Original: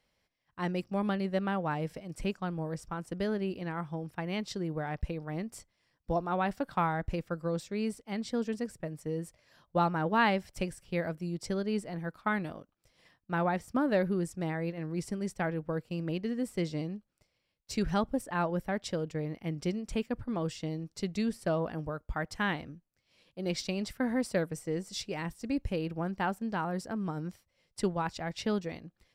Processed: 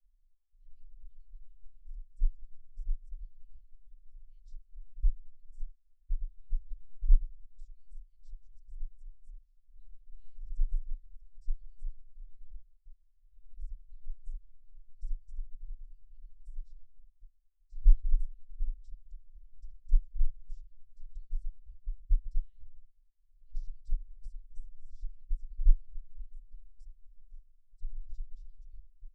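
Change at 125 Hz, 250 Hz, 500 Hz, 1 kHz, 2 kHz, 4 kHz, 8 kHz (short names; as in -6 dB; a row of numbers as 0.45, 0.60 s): -7.0 dB, under -40 dB, under -40 dB, under -40 dB, under -40 dB, -40.0 dB, under -30 dB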